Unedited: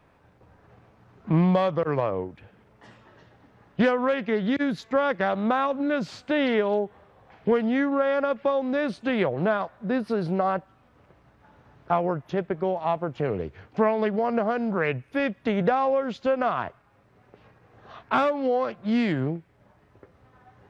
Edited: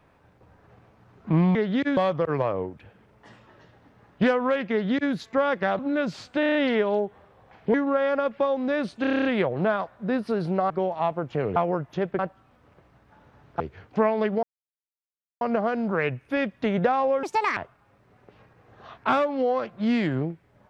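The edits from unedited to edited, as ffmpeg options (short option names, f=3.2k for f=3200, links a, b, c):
-filter_complex "[0:a]asplit=25[a][b][c][d][e][f][g][h][i][j][k][l][m][n][o][p][q][r][s][t][u][v][w][x][y];[a]atrim=end=1.552[z];[b]atrim=start=4.288:end=4.712[aa];[c]atrim=start=1.548:end=5.372[ab];[d]atrim=start=5.728:end=6.372[ac];[e]atrim=start=6.338:end=6.372[ad];[f]atrim=start=6.338:end=6.372[ae];[g]atrim=start=6.338:end=6.372[af];[h]atrim=start=6.338:end=6.372[ag];[i]atrim=start=6.338:end=7.532[ah];[j]atrim=start=7.788:end=9.092[ai];[k]atrim=start=9.058:end=9.092[aj];[l]atrim=start=9.058:end=9.092[ak];[m]atrim=start=9.058:end=9.092[al];[n]atrim=start=9.058:end=9.092[am];[o]atrim=start=9.058:end=9.092[an];[p]atrim=start=9.058:end=9.092[ao];[q]atrim=start=9.058:end=9.092[ap];[r]atrim=start=9.058:end=10.512[aq];[s]atrim=start=12.548:end=13.412[ar];[t]atrim=start=11.918:end=12.552[as];[u]atrim=start=10.508:end=11.922[at];[v]atrim=start=13.408:end=14.24,asetpts=PTS-STARTPTS,afade=t=out:st=0.828:d=0.004:c=hsin,apad=pad_dur=0.98[au];[w]atrim=start=14.24:end=16.064,asetpts=PTS-STARTPTS,afade=t=in:d=0.004:c=hsin[av];[x]atrim=start=16.06:end=16.62,asetpts=PTS-STARTPTS,asetrate=73206,aresample=44100,atrim=end_sample=14877,asetpts=PTS-STARTPTS[aw];[y]atrim=start=16.616[ax];[z][aa]acrossfade=d=0.004:c1=hsin:c2=hsin[ay];[ay][ab]acrossfade=d=0.004:c1=hsin:c2=hsin[az];[az][ac]acrossfade=d=0.004:c1=hsin:c2=hsin[ba];[ba][ad]acrossfade=d=0.004:c1=hsin:c2=hsin[bb];[bb][ae]acrossfade=d=0.004:c1=hsin:c2=hsin[bc];[bc][af]acrossfade=d=0.004:c1=hsin:c2=hsin[bd];[bd][ag]acrossfade=d=0.004:c1=hsin:c2=hsin[be];[be][ah]acrossfade=d=0.004:c1=hsin:c2=hsin[bf];[bf][ai]acrossfade=d=0.004:c1=hsin:c2=hsin[bg];[bg][aj]acrossfade=d=0.004:c1=hsin:c2=hsin[bh];[bh][ak]acrossfade=d=0.004:c1=hsin:c2=hsin[bi];[bi][al]acrossfade=d=0.004:c1=hsin:c2=hsin[bj];[bj][am]acrossfade=d=0.004:c1=hsin:c2=hsin[bk];[bk][an]acrossfade=d=0.004:c1=hsin:c2=hsin[bl];[bl][ao]acrossfade=d=0.004:c1=hsin:c2=hsin[bm];[bm][ap]acrossfade=d=0.004:c1=hsin:c2=hsin[bn];[bn][aq]acrossfade=d=0.004:c1=hsin:c2=hsin[bo];[bo][ar]acrossfade=d=0.004:c1=hsin:c2=hsin[bp];[bp][as]acrossfade=d=0.004:c1=hsin:c2=hsin[bq];[bq][at]acrossfade=d=0.004:c1=hsin:c2=hsin[br];[au][av]concat=n=2:v=0:a=1[bs];[br][bs]acrossfade=d=0.004:c1=hsin:c2=hsin[bt];[bt][aw]acrossfade=d=0.004:c1=hsin:c2=hsin[bu];[bu][ax]acrossfade=d=0.004:c1=hsin:c2=hsin"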